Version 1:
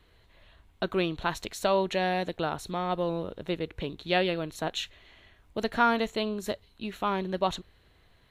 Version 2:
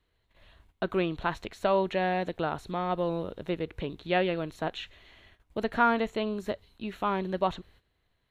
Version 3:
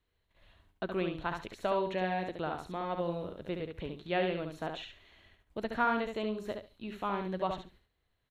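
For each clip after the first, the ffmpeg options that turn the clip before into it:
-filter_complex "[0:a]acrossover=split=3100[a][b];[b]acompressor=threshold=-54dB:ratio=4:attack=1:release=60[c];[a][c]amix=inputs=2:normalize=0,agate=range=-13dB:threshold=-57dB:ratio=16:detection=peak"
-af "aecho=1:1:70|140|210:0.531|0.0956|0.0172,volume=-6dB"

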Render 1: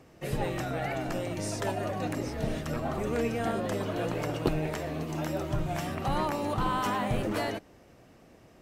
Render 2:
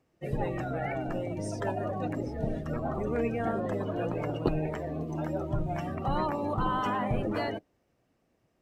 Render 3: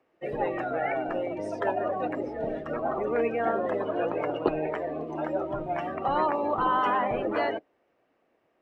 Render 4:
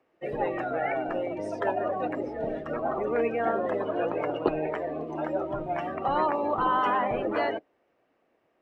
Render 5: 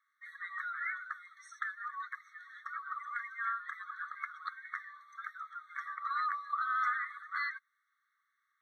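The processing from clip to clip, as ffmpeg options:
-af "afftdn=nr=17:nf=-37"
-filter_complex "[0:a]acrossover=split=300 3300:gain=0.112 1 0.112[a][b][c];[a][b][c]amix=inputs=3:normalize=0,volume=6dB"
-af anull
-af "afftfilt=real='re*eq(mod(floor(b*sr/1024/1100),2),1)':imag='im*eq(mod(floor(b*sr/1024/1100),2),1)':win_size=1024:overlap=0.75"

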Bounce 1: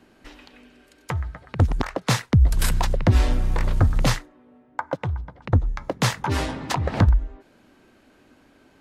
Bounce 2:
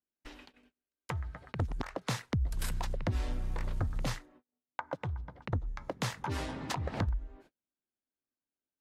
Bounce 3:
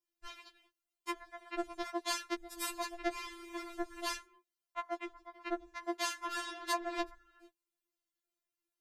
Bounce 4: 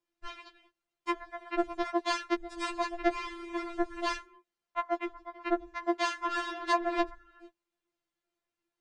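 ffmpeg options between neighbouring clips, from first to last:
-af "agate=range=-40dB:threshold=-47dB:ratio=16:detection=peak,acompressor=threshold=-32dB:ratio=2,volume=-5dB"
-af "afftfilt=real='re*4*eq(mod(b,16),0)':imag='im*4*eq(mod(b,16),0)':win_size=2048:overlap=0.75,volume=5dB"
-filter_complex "[0:a]acrossover=split=8700[a][b];[b]acompressor=threshold=-59dB:ratio=4:attack=1:release=60[c];[a][c]amix=inputs=2:normalize=0,aemphasis=mode=reproduction:type=75fm,aresample=22050,aresample=44100,volume=7.5dB"

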